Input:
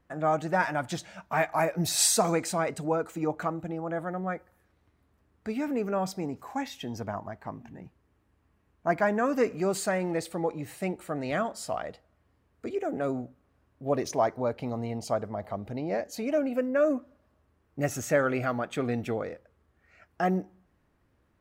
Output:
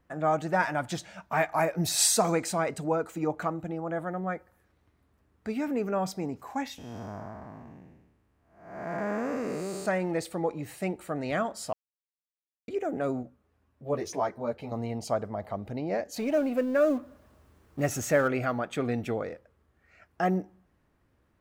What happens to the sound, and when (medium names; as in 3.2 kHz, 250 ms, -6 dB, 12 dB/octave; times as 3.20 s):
6.78–9.86 s: spectral blur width 357 ms
11.73–12.68 s: mute
13.23–14.72 s: three-phase chorus
16.16–18.28 s: companding laws mixed up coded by mu